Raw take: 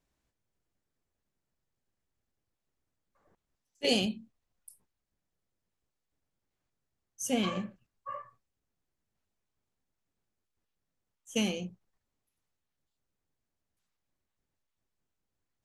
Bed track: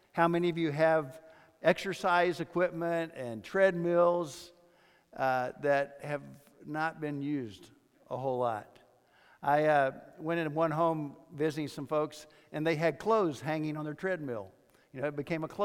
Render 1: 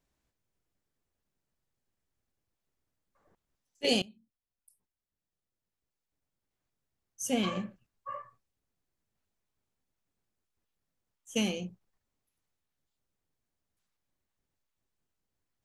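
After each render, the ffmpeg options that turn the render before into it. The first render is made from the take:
ffmpeg -i in.wav -filter_complex "[0:a]asplit=2[link_01][link_02];[link_01]atrim=end=4.02,asetpts=PTS-STARTPTS,afade=type=out:start_time=4.016:duration=0.004:curve=hsin:silence=0.0794328[link_03];[link_02]atrim=start=4.02,asetpts=PTS-STARTPTS,afade=type=in:duration=3.19:silence=0.0794328[link_04];[link_03][link_04]concat=n=2:v=0:a=1" out.wav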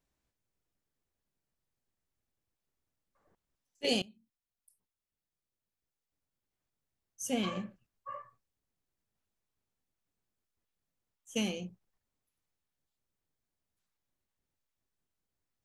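ffmpeg -i in.wav -af "volume=-3dB" out.wav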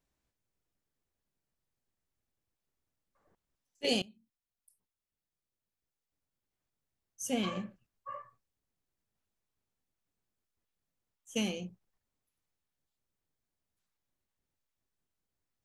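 ffmpeg -i in.wav -af anull out.wav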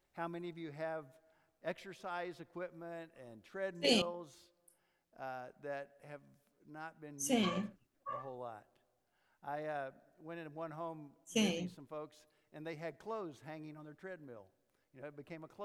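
ffmpeg -i in.wav -i bed.wav -filter_complex "[1:a]volume=-15.5dB[link_01];[0:a][link_01]amix=inputs=2:normalize=0" out.wav

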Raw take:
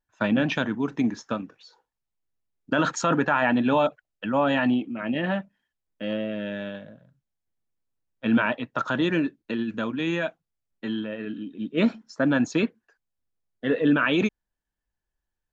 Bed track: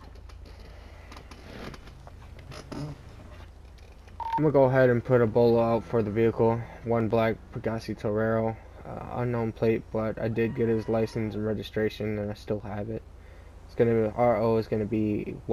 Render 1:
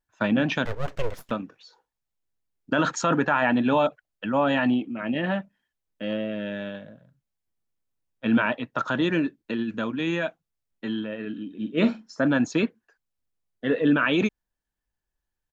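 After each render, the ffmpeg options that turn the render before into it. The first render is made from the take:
ffmpeg -i in.wav -filter_complex "[0:a]asettb=1/sr,asplit=3[link_01][link_02][link_03];[link_01]atrim=end=0.654[link_04];[link_02]atrim=start=0.65:end=1.31,asetpts=PTS-STARTPTS,afade=type=in:duration=0.004:curve=qsin,afade=type=out:start_time=0.656:duration=0.004:curve=qsin,aeval=exprs='abs(val(0))':channel_layout=same[link_05];[link_03]atrim=start=1.306[link_06];[link_04][link_05]acrossfade=duration=0.004:curve1=hsin:curve2=qsin[link_07];[link_07][link_06]acrossfade=duration=0.004:curve1=qsin:curve2=hsin,asplit=3[link_08][link_09][link_10];[link_08]afade=type=out:start_time=11.49:duration=0.02[link_11];[link_09]asplit=2[link_12][link_13];[link_13]adelay=46,volume=-10dB[link_14];[link_12][link_14]amix=inputs=2:normalize=0,afade=type=in:start_time=11.49:duration=0.02,afade=type=out:start_time=12.26:duration=0.02[link_15];[link_10]afade=type=in:start_time=12.26:duration=0.02[link_16];[link_11][link_15][link_16]amix=inputs=3:normalize=0" out.wav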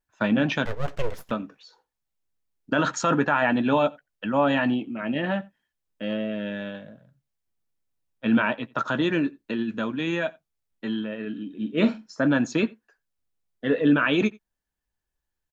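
ffmpeg -i in.wav -filter_complex "[0:a]asplit=2[link_01][link_02];[link_02]adelay=14,volume=-13.5dB[link_03];[link_01][link_03]amix=inputs=2:normalize=0,asplit=2[link_04][link_05];[link_05]adelay=87.46,volume=-25dB,highshelf=frequency=4000:gain=-1.97[link_06];[link_04][link_06]amix=inputs=2:normalize=0" out.wav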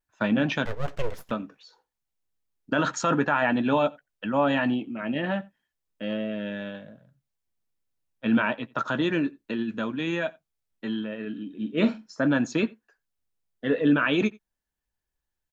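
ffmpeg -i in.wav -af "volume=-1.5dB" out.wav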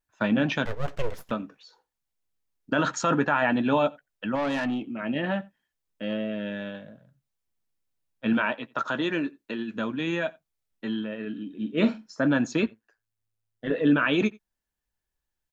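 ffmpeg -i in.wav -filter_complex "[0:a]asettb=1/sr,asplit=3[link_01][link_02][link_03];[link_01]atrim=end=4.354[link_04];[link_02]atrim=start=4.35:end=4.86,asetpts=PTS-STARTPTS,afade=type=in:duration=0.004:curve=qsin,afade=type=out:start_time=0.506:duration=0.004:curve=qsin,aeval=exprs='(tanh(14.1*val(0)+0.1)-tanh(0.1))/14.1':channel_layout=same[link_05];[link_03]atrim=start=4.856[link_06];[link_04][link_05]acrossfade=duration=0.004:curve1=hsin:curve2=qsin[link_07];[link_07][link_06]acrossfade=duration=0.004:curve1=qsin:curve2=hsin,asettb=1/sr,asplit=3[link_08][link_09][link_10];[link_08]atrim=end=8.334[link_11];[link_09]atrim=start=8.33:end=9.76,asetpts=PTS-STARTPTS,afade=type=in:duration=0.004:curve=qsin,afade=type=out:start_time=1.426:duration=0.004:curve=qsin,lowshelf=frequency=180:gain=-10.5[link_12];[link_10]atrim=start=9.756[link_13];[link_11][link_12]acrossfade=duration=0.004:curve1=hsin:curve2=qsin[link_14];[link_14][link_13]acrossfade=duration=0.004:curve1=qsin:curve2=hsin,asettb=1/sr,asplit=3[link_15][link_16][link_17];[link_15]atrim=end=12.664[link_18];[link_16]atrim=start=12.66:end=13.75,asetpts=PTS-STARTPTS,afade=type=in:duration=0.004:curve=qsin,afade=type=out:start_time=1.086:duration=0.004:curve=qsin,tremolo=f=110:d=0.667[link_19];[link_17]atrim=start=13.746[link_20];[link_18][link_19]acrossfade=duration=0.004:curve1=hsin:curve2=qsin[link_21];[link_21][link_20]acrossfade=duration=0.004:curve1=qsin:curve2=hsin" out.wav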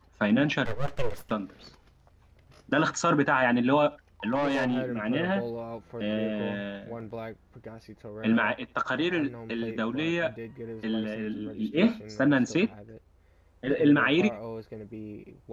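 ffmpeg -i in.wav -i bed.wav -filter_complex "[1:a]volume=-13.5dB[link_01];[0:a][link_01]amix=inputs=2:normalize=0" out.wav

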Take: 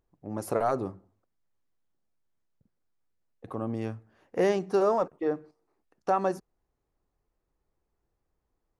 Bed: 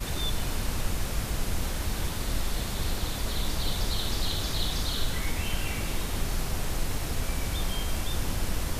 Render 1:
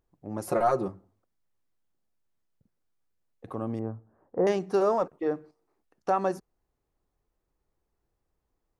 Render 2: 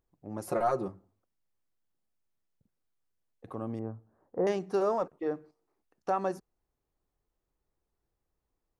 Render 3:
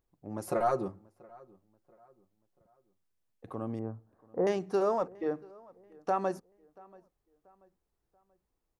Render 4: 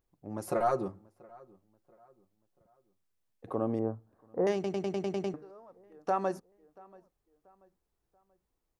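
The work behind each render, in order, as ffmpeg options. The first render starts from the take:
ffmpeg -i in.wav -filter_complex "[0:a]asettb=1/sr,asplit=3[link_01][link_02][link_03];[link_01]atrim=end=0.484[link_04];[link_02]atrim=start=0.48:end=0.88,asetpts=PTS-STARTPTS,afade=type=in:duration=0.004:curve=qsin,afade=type=out:start_time=0.396:duration=0.004:curve=qsin,aecho=1:1:5.6:0.79,atrim=end_sample=17640[link_05];[link_03]atrim=start=0.876[link_06];[link_04][link_05]acrossfade=duration=0.004:curve1=hsin:curve2=qsin[link_07];[link_07][link_06]acrossfade=duration=0.004:curve1=qsin:curve2=hsin,asettb=1/sr,asplit=3[link_08][link_09][link_10];[link_08]atrim=end=3.794[link_11];[link_09]atrim=start=3.79:end=4.47,asetpts=PTS-STARTPTS,afade=type=in:duration=0.004:curve=qsin,afade=type=out:start_time=0.676:duration=0.004:curve=qsin,lowpass=frequency=1200:width=0.5412,lowpass=frequency=1200:width=1.3066[link_12];[link_10]atrim=start=4.466[link_13];[link_11][link_12]acrossfade=duration=0.004:curve1=hsin:curve2=qsin[link_14];[link_14][link_13]acrossfade=duration=0.004:curve1=qsin:curve2=hsin" out.wav
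ffmpeg -i in.wav -af "volume=-4dB" out.wav
ffmpeg -i in.wav -filter_complex "[0:a]asplit=2[link_01][link_02];[link_02]adelay=684,lowpass=frequency=2500:poles=1,volume=-24dB,asplit=2[link_03][link_04];[link_04]adelay=684,lowpass=frequency=2500:poles=1,volume=0.4,asplit=2[link_05][link_06];[link_06]adelay=684,lowpass=frequency=2500:poles=1,volume=0.4[link_07];[link_01][link_03][link_05][link_07]amix=inputs=4:normalize=0" out.wav
ffmpeg -i in.wav -filter_complex "[0:a]asplit=3[link_01][link_02][link_03];[link_01]afade=type=out:start_time=3.46:duration=0.02[link_04];[link_02]equalizer=frequency=510:width_type=o:width=2.1:gain=8.5,afade=type=in:start_time=3.46:duration=0.02,afade=type=out:start_time=3.94:duration=0.02[link_05];[link_03]afade=type=in:start_time=3.94:duration=0.02[link_06];[link_04][link_05][link_06]amix=inputs=3:normalize=0,asplit=9[link_07][link_08][link_09][link_10][link_11][link_12][link_13][link_14][link_15];[link_07]atrim=end=4.642[link_16];[link_08]atrim=start=4.538:end=4.642[link_17];[link_09]atrim=start=4.538:end=4.642[link_18];[link_10]atrim=start=4.538:end=4.642[link_19];[link_11]atrim=start=4.538:end=4.642[link_20];[link_12]atrim=start=4.538:end=4.642[link_21];[link_13]atrim=start=4.538:end=4.642[link_22];[link_14]atrim=start=4.538:end=4.642[link_23];[link_15]atrim=start=5.338[link_24];[link_16][link_17]acrossfade=duration=0.004:curve1=hsin:curve2=hsin[link_25];[link_25][link_18]acrossfade=duration=0.004:curve1=hsin:curve2=hsin[link_26];[link_26][link_19]acrossfade=duration=0.004:curve1=hsin:curve2=hsin[link_27];[link_27][link_20]acrossfade=duration=0.004:curve1=hsin:curve2=hsin[link_28];[link_28][link_21]acrossfade=duration=0.004:curve1=hsin:curve2=hsin[link_29];[link_29][link_22]acrossfade=duration=0.004:curve1=hsin:curve2=hsin[link_30];[link_30][link_23]acrossfade=duration=0.004:curve1=hsin:curve2=hsin[link_31];[link_31][link_24]acrossfade=duration=0.004:curve1=hsin:curve2=hsin" out.wav

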